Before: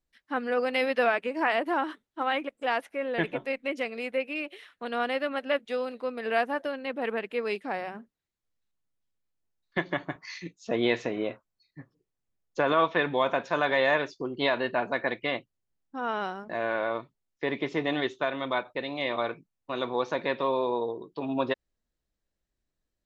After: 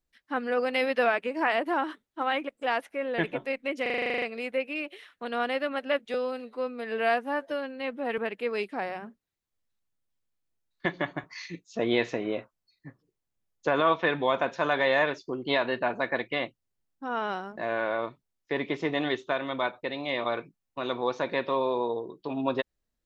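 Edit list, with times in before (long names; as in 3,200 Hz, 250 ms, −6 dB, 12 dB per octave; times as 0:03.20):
0:03.82: stutter 0.04 s, 11 plays
0:05.74–0:07.10: time-stretch 1.5×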